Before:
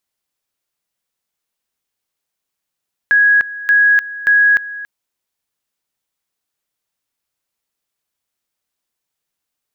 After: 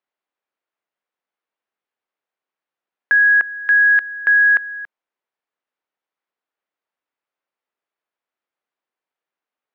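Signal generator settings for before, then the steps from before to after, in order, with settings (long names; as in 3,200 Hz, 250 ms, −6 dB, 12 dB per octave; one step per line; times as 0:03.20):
tone at two levels in turn 1,660 Hz −7.5 dBFS, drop 17 dB, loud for 0.30 s, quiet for 0.28 s, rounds 3
band-pass filter 330–2,000 Hz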